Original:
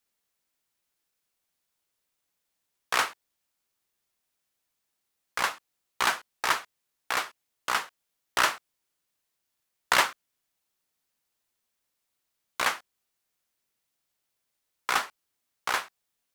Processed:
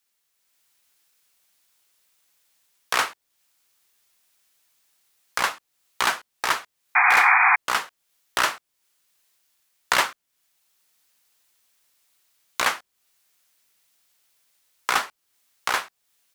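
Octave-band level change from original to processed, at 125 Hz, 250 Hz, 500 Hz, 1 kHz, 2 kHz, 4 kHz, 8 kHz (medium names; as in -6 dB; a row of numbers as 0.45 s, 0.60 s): no reading, +3.0 dB, +3.0 dB, +6.5 dB, +8.0 dB, +3.0 dB, +3.5 dB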